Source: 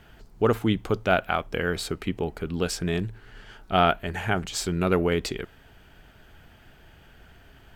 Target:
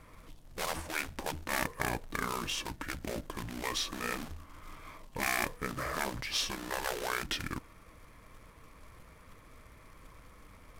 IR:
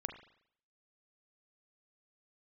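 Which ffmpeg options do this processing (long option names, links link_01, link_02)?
-af "acrusher=bits=3:mode=log:mix=0:aa=0.000001,afftfilt=real='re*lt(hypot(re,im),0.158)':imag='im*lt(hypot(re,im),0.158)':win_size=1024:overlap=0.75,asetrate=31664,aresample=44100,volume=-2.5dB"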